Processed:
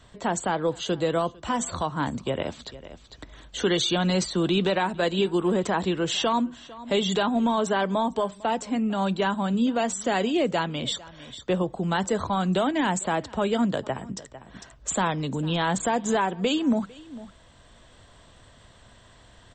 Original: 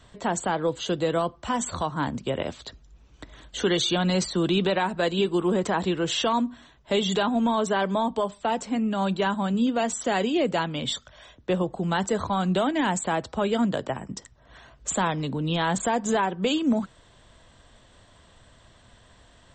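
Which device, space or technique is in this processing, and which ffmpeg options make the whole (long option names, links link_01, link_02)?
ducked delay: -filter_complex "[0:a]asplit=3[link_01][link_02][link_03];[link_02]adelay=451,volume=-2.5dB[link_04];[link_03]apad=whole_len=881996[link_05];[link_04][link_05]sidechaincompress=threshold=-44dB:ratio=8:attack=11:release=641[link_06];[link_01][link_06]amix=inputs=2:normalize=0"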